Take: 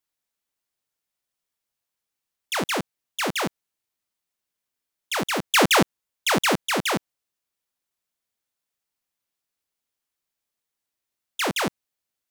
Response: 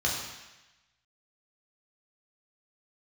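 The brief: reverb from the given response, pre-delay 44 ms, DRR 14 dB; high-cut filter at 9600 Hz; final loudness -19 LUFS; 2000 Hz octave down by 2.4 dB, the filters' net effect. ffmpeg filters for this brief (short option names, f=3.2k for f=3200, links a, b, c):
-filter_complex "[0:a]lowpass=9.6k,equalizer=f=2k:t=o:g=-3,asplit=2[a][b];[1:a]atrim=start_sample=2205,adelay=44[c];[b][c]afir=irnorm=-1:irlink=0,volume=-24dB[d];[a][d]amix=inputs=2:normalize=0,volume=5.5dB"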